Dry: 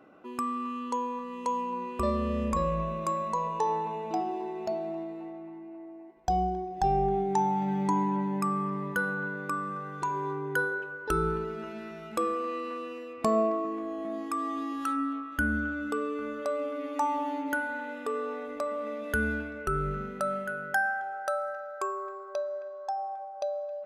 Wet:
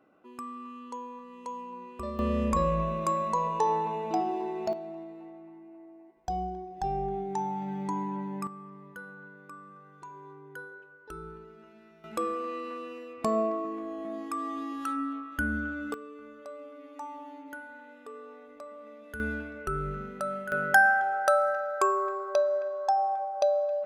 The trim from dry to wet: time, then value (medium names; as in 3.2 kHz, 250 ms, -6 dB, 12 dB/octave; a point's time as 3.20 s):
-8.5 dB
from 2.19 s +2 dB
from 4.73 s -5.5 dB
from 8.47 s -15 dB
from 12.04 s -2 dB
from 15.94 s -12.5 dB
from 19.20 s -2.5 dB
from 20.52 s +7.5 dB